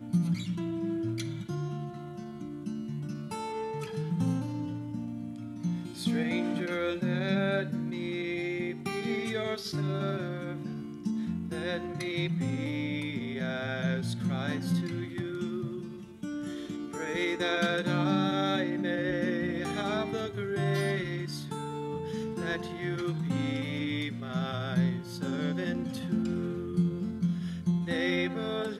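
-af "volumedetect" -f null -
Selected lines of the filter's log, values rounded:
mean_volume: -31.7 dB
max_volume: -14.7 dB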